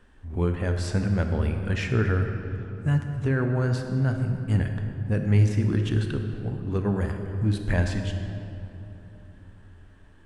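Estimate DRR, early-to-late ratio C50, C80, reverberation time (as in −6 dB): 5.0 dB, 6.0 dB, 7.0 dB, 3.0 s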